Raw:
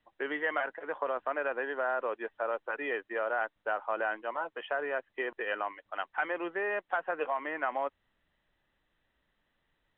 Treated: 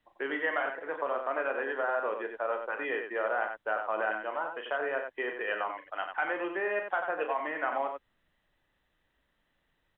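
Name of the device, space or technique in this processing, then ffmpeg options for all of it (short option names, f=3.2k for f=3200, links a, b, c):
slapback doubling: -filter_complex "[0:a]asplit=3[a][b][c];[b]adelay=37,volume=-8dB[d];[c]adelay=92,volume=-6.5dB[e];[a][d][e]amix=inputs=3:normalize=0"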